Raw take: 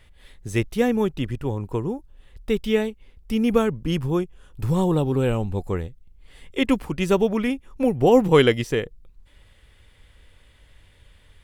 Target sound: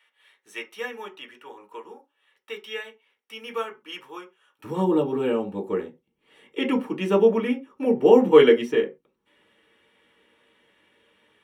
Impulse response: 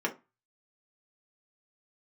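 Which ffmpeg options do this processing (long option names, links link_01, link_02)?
-filter_complex "[0:a]asetnsamples=nb_out_samples=441:pad=0,asendcmd='4.64 highpass f 210',highpass=1100[link_01];[1:a]atrim=start_sample=2205,atrim=end_sample=6174[link_02];[link_01][link_02]afir=irnorm=-1:irlink=0,volume=-9dB"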